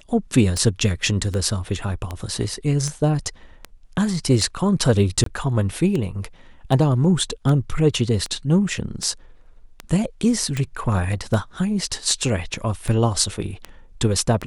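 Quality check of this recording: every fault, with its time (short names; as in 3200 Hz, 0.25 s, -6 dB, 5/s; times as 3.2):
tick 78 rpm -13 dBFS
5.24–5.26 gap 23 ms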